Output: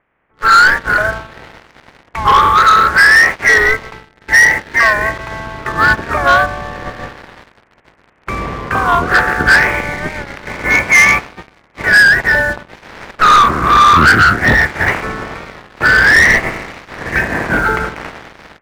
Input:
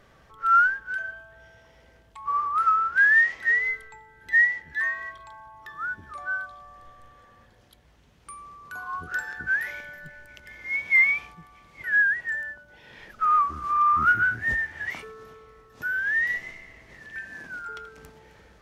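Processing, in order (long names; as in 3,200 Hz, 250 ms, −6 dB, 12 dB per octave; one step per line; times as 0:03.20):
ceiling on every frequency bin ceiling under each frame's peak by 21 dB
Butterworth low-pass 2,300 Hz
automatic gain control gain up to 14 dB
leveller curve on the samples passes 3
wow of a warped record 45 rpm, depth 100 cents
level −1 dB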